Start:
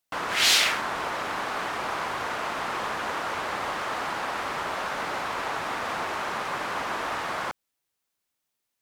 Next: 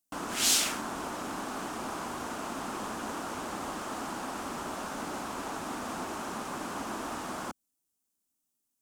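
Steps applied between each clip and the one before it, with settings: graphic EQ 125/250/500/1000/2000/4000/8000 Hz -6/+8/-7/-4/-12/-7/+4 dB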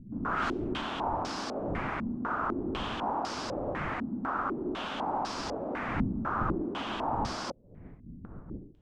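wind noise 180 Hz -43 dBFS; step-sequenced low-pass 4 Hz 230–5000 Hz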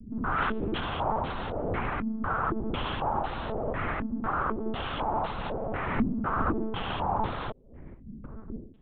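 monotone LPC vocoder at 8 kHz 220 Hz; trim +3 dB

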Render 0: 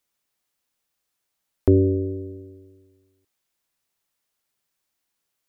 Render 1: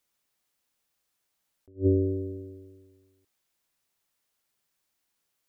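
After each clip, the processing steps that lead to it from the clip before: attacks held to a fixed rise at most 300 dB/s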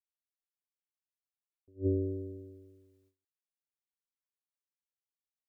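gate with hold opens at -52 dBFS; trim -7 dB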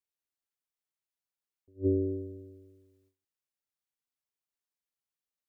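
dynamic bell 330 Hz, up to +4 dB, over -39 dBFS, Q 1.1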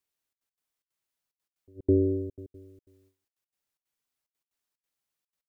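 trance gate "xxxx.x.xxx.x" 183 bpm -60 dB; trim +6 dB

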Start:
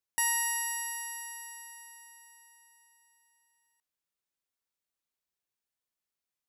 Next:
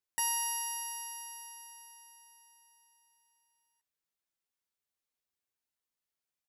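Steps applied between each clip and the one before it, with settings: doubling 12 ms -3.5 dB; trim -3.5 dB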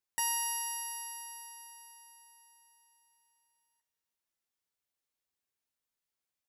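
two-slope reverb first 0.24 s, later 3.7 s, from -20 dB, DRR 13.5 dB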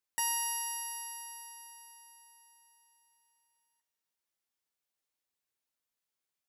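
bass shelf 140 Hz -5 dB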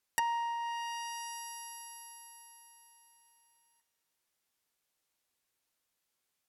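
low-pass that closes with the level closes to 1.3 kHz, closed at -31.5 dBFS; trim +7 dB

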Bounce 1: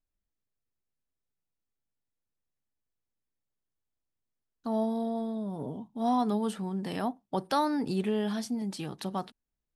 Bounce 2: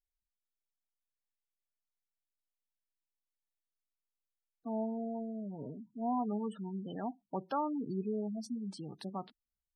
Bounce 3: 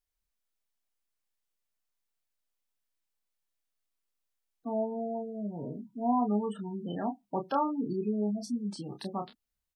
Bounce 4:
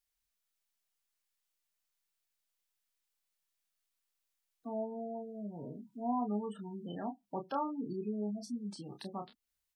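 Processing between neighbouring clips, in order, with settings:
spectral gate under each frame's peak -15 dB strong; trim -6.5 dB
doubling 29 ms -5.5 dB; trim +4.5 dB
tape noise reduction on one side only encoder only; trim -6.5 dB

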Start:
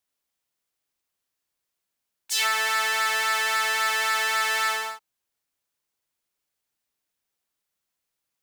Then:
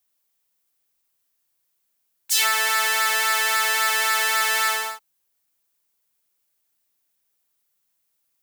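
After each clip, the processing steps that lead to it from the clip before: treble shelf 9.3 kHz +11.5 dB; trim +2 dB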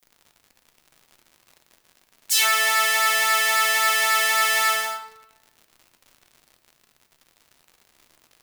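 crackle 130 per s -39 dBFS; on a send at -6 dB: reverberation RT60 1.1 s, pre-delay 3 ms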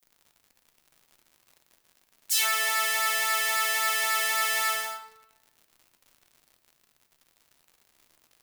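treble shelf 8.2 kHz +4.5 dB; trim -7 dB

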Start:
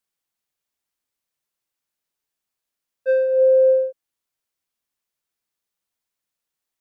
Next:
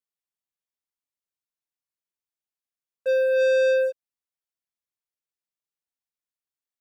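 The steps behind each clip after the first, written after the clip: waveshaping leveller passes 3; trim -7 dB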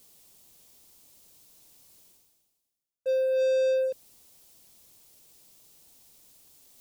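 peaking EQ 1.6 kHz -13.5 dB 1.7 oct; reverse; upward compressor, threshold -26 dBFS; reverse; trim -1.5 dB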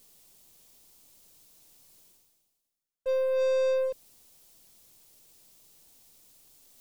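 partial rectifier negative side -3 dB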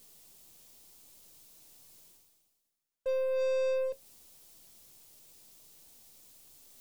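in parallel at +2.5 dB: compression, threshold -36 dBFS, peak gain reduction 12 dB; on the sum: feedback comb 77 Hz, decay 0.15 s, harmonics all, mix 60%; trim -3 dB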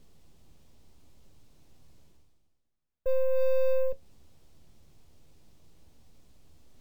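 RIAA curve playback; careless resampling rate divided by 2×, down filtered, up hold

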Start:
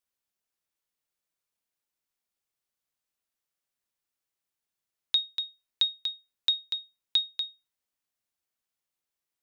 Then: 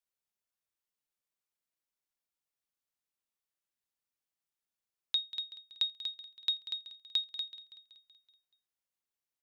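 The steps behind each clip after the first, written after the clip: feedback delay 189 ms, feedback 58%, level -15 dB; trim -6 dB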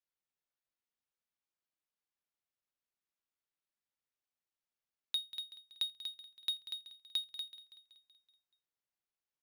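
median filter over 5 samples; de-hum 50.04 Hz, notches 3; trim -3.5 dB

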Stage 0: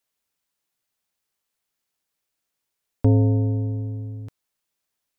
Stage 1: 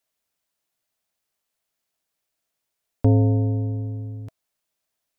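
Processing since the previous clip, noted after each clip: peaking EQ 650 Hz +7.5 dB 0.21 oct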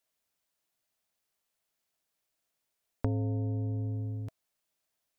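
compression 4:1, threshold -27 dBFS, peak gain reduction 12.5 dB; trim -2.5 dB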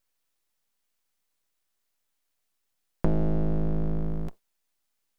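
octave divider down 1 oct, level 0 dB; full-wave rectifier; trim +5.5 dB

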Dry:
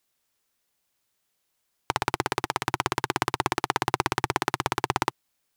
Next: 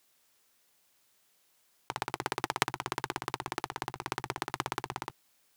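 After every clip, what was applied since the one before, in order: bass shelf 120 Hz -8 dB; compressor with a negative ratio -31 dBFS, ratio -0.5; trim -1 dB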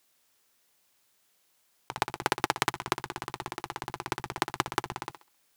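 thinning echo 66 ms, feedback 36%, high-pass 300 Hz, level -12 dB; level held to a coarse grid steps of 11 dB; trim +7.5 dB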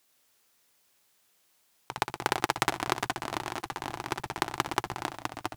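ever faster or slower copies 89 ms, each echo -2 st, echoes 2, each echo -6 dB

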